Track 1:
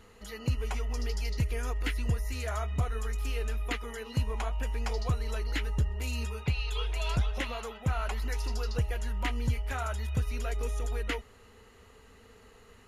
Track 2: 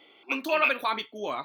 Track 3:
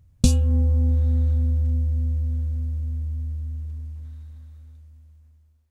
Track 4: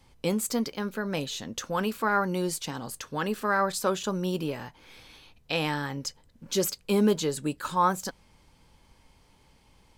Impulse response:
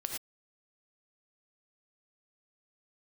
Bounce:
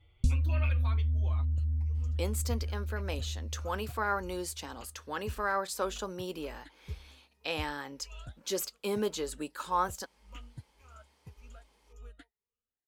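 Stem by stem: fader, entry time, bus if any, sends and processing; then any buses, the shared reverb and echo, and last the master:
−13.0 dB, 1.10 s, no send, rippled gain that drifts along the octave scale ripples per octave 0.81, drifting +1.8 Hz, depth 15 dB; expander for the loud parts 2.5 to 1, over −42 dBFS
−13.5 dB, 0.00 s, no send, barber-pole flanger 6.6 ms +1.9 Hz
0.0 dB, 0.00 s, no send, guitar amp tone stack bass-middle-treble 10-0-1
−5.5 dB, 1.95 s, no send, high-pass filter 300 Hz 12 dB per octave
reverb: not used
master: no processing

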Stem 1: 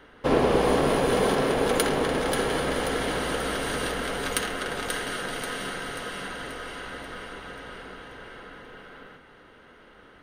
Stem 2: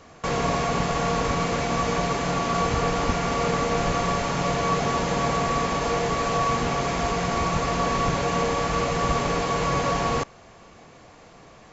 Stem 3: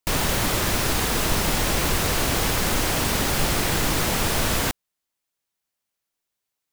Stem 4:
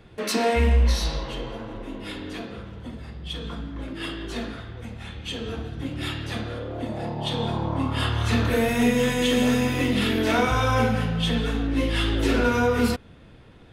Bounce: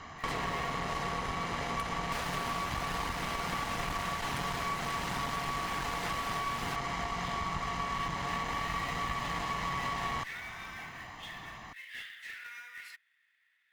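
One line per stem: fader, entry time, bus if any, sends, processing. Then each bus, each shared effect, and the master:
−12.5 dB, 0.00 s, bus A, no send, no processing
−6.0 dB, 0.00 s, bus A, no send, low-shelf EQ 170 Hz +4.5 dB; comb filter 1 ms, depth 66%
−6.0 dB, 2.05 s, bus A, no send, high-shelf EQ 11,000 Hz −6.5 dB; reverb reduction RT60 1.5 s
−9.0 dB, 0.00 s, no bus, no send, four-pole ladder high-pass 1,800 Hz, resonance 80%; floating-point word with a short mantissa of 2 bits
bus A: 0.0 dB, parametric band 1,700 Hz +9 dB 2.8 octaves; downward compressor 4 to 1, threshold −31 dBFS, peak gain reduction 13.5 dB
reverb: not used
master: asymmetric clip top −39.5 dBFS

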